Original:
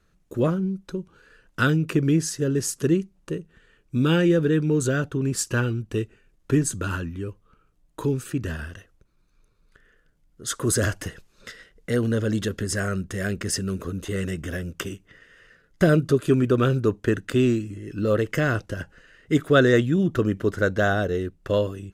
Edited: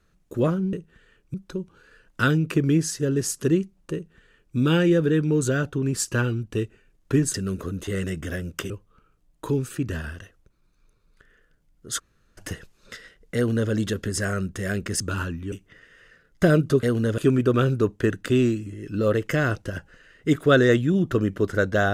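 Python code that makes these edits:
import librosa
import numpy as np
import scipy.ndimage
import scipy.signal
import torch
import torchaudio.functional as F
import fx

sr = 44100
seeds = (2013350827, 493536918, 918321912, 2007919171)

y = fx.edit(x, sr, fx.duplicate(start_s=3.34, length_s=0.61, to_s=0.73),
    fx.swap(start_s=6.73, length_s=0.52, other_s=13.55, other_length_s=1.36),
    fx.room_tone_fill(start_s=10.54, length_s=0.39, crossfade_s=0.02),
    fx.duplicate(start_s=11.91, length_s=0.35, to_s=16.22), tone=tone)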